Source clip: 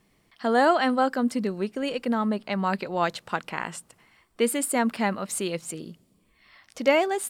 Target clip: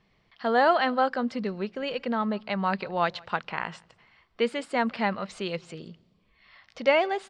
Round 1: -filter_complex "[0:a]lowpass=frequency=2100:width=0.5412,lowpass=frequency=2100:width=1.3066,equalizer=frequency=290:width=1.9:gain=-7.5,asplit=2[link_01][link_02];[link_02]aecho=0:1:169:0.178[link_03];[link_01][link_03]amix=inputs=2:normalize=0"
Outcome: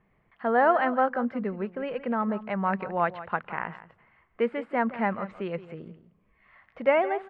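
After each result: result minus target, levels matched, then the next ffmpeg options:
4,000 Hz band −13.0 dB; echo-to-direct +11.5 dB
-filter_complex "[0:a]lowpass=frequency=4800:width=0.5412,lowpass=frequency=4800:width=1.3066,equalizer=frequency=290:width=1.9:gain=-7.5,asplit=2[link_01][link_02];[link_02]aecho=0:1:169:0.178[link_03];[link_01][link_03]amix=inputs=2:normalize=0"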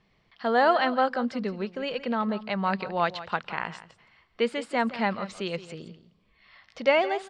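echo-to-direct +11.5 dB
-filter_complex "[0:a]lowpass=frequency=4800:width=0.5412,lowpass=frequency=4800:width=1.3066,equalizer=frequency=290:width=1.9:gain=-7.5,asplit=2[link_01][link_02];[link_02]aecho=0:1:169:0.0473[link_03];[link_01][link_03]amix=inputs=2:normalize=0"

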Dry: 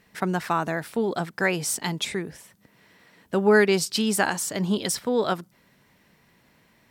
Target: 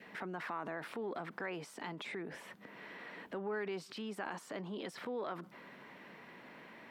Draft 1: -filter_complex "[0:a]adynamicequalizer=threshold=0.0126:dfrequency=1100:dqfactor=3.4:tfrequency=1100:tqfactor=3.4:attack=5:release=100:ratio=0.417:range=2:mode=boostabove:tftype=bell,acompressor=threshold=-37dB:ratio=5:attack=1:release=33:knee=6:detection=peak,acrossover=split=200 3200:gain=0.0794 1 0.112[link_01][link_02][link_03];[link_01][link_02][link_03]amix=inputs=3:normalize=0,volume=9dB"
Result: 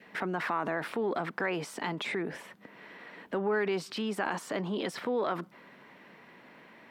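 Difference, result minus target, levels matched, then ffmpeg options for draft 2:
downward compressor: peak gain reduction −9.5 dB
-filter_complex "[0:a]adynamicequalizer=threshold=0.0126:dfrequency=1100:dqfactor=3.4:tfrequency=1100:tqfactor=3.4:attack=5:release=100:ratio=0.417:range=2:mode=boostabove:tftype=bell,acompressor=threshold=-49dB:ratio=5:attack=1:release=33:knee=6:detection=peak,acrossover=split=200 3200:gain=0.0794 1 0.112[link_01][link_02][link_03];[link_01][link_02][link_03]amix=inputs=3:normalize=0,volume=9dB"

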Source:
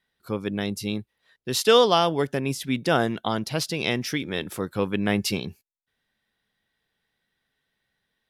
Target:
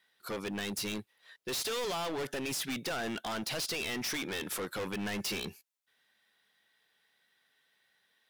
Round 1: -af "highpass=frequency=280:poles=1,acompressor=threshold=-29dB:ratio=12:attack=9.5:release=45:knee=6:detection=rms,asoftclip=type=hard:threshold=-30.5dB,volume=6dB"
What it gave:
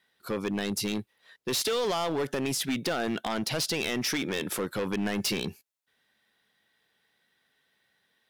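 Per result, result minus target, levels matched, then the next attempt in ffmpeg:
hard clipping: distortion −6 dB; 250 Hz band +2.5 dB
-af "highpass=frequency=280:poles=1,acompressor=threshold=-29dB:ratio=12:attack=9.5:release=45:knee=6:detection=rms,asoftclip=type=hard:threshold=-39dB,volume=6dB"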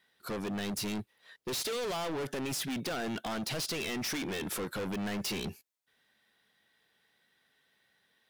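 250 Hz band +2.5 dB
-af "highpass=frequency=780:poles=1,acompressor=threshold=-29dB:ratio=12:attack=9.5:release=45:knee=6:detection=rms,asoftclip=type=hard:threshold=-39dB,volume=6dB"

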